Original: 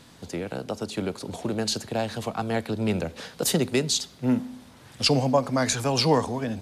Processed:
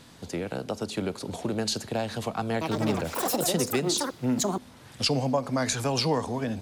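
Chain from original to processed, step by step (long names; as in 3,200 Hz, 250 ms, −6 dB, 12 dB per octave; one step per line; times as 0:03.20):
0:02.51–0:05.29: delay with pitch and tempo change per echo 102 ms, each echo +6 semitones, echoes 3
downward compressor 2 to 1, threshold −25 dBFS, peak gain reduction 5.5 dB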